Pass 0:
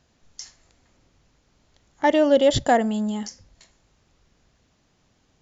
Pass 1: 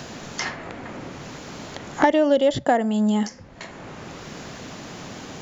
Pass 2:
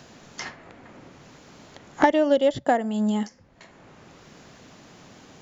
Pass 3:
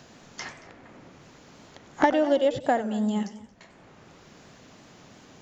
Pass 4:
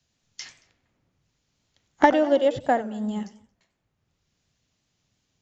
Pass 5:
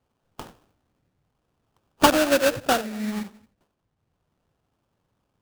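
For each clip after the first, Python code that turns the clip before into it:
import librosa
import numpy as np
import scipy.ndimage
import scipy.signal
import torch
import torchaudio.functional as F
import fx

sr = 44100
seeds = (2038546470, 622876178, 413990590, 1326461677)

y1 = fx.band_squash(x, sr, depth_pct=100)
y2 = fx.upward_expand(y1, sr, threshold_db=-36.0, expansion=1.5)
y3 = y2 + 10.0 ** (-20.0 / 20.0) * np.pad(y2, (int(227 * sr / 1000.0), 0))[:len(y2)]
y3 = fx.echo_warbled(y3, sr, ms=90, feedback_pct=35, rate_hz=2.8, cents=207, wet_db=-14)
y3 = y3 * librosa.db_to_amplitude(-2.5)
y4 = fx.band_widen(y3, sr, depth_pct=100)
y4 = y4 * librosa.db_to_amplitude(-4.5)
y5 = fx.sample_hold(y4, sr, seeds[0], rate_hz=2100.0, jitter_pct=20)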